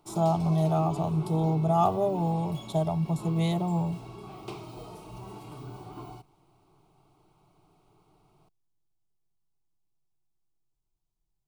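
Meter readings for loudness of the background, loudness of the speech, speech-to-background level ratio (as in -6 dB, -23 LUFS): -42.0 LUFS, -27.5 LUFS, 14.5 dB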